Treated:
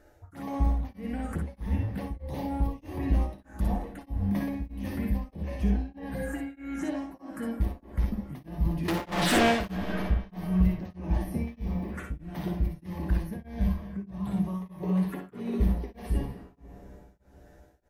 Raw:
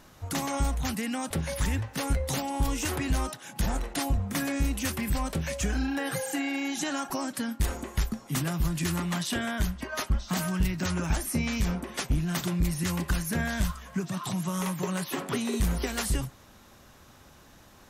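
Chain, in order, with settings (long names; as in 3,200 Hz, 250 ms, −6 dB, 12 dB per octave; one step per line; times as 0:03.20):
high shelf with overshoot 2,100 Hz −13 dB, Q 1.5
tuned comb filter 66 Hz, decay 0.28 s, harmonics odd, mix 80%
0:11.37–0:11.86: bit-depth reduction 12 bits, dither none
phaser swept by the level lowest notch 160 Hz, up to 1,400 Hz, full sweep at −37 dBFS
0:08.88–0:09.77: mid-hump overdrive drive 37 dB, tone 5,000 Hz, clips at −24.5 dBFS
ambience of single reflections 55 ms −6 dB, 65 ms −5.5 dB
on a send at −11 dB: convolution reverb RT60 3.5 s, pre-delay 124 ms
on the sum: tremolo along a rectified sine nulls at 1.6 Hz
level +8.5 dB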